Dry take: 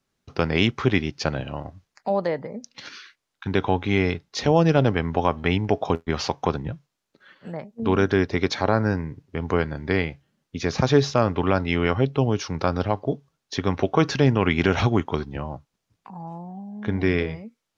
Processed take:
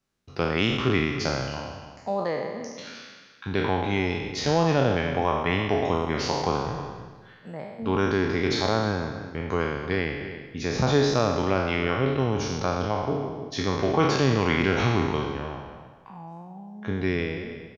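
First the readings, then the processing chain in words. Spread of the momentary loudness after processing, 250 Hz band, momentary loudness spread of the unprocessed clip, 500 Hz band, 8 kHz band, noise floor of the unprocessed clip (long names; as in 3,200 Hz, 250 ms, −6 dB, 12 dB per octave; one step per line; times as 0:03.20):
17 LU, −3.0 dB, 17 LU, −2.0 dB, can't be measured, −80 dBFS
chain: peak hold with a decay on every bin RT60 1.36 s
slap from a distant wall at 53 metres, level −13 dB
level −5.5 dB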